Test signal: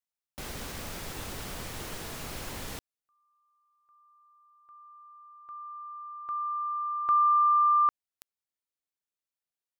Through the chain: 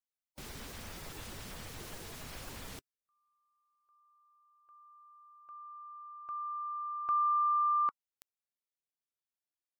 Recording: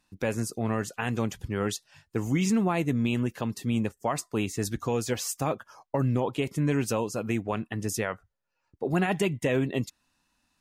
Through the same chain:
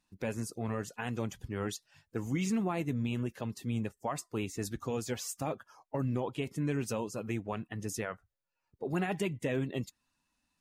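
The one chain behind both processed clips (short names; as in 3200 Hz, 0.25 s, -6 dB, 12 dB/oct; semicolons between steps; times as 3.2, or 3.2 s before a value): bin magnitudes rounded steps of 15 dB; gain -6.5 dB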